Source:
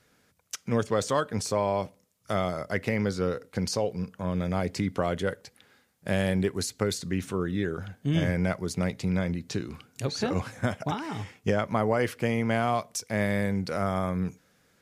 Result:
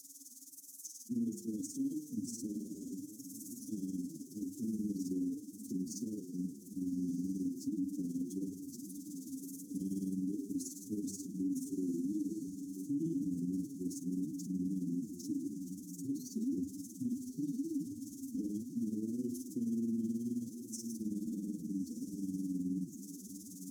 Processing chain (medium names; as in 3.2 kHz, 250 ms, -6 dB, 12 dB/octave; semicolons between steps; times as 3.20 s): zero-crossing glitches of -24 dBFS; vowel filter i; bass shelf 390 Hz -4.5 dB; reverberation RT60 5.6 s, pre-delay 46 ms, DRR 19.5 dB; AM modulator 30 Hz, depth 65%; Chebyshev band-stop 350–6100 Hz, order 4; bass shelf 110 Hz -8.5 dB; hum notches 50/100/150/200/250/300/350/400/450 Hz; echo that smears into a reverb 786 ms, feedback 47%, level -11 dB; time stretch by phase-locked vocoder 1.6×; peak limiter -44 dBFS, peak gain reduction 10 dB; trim +15 dB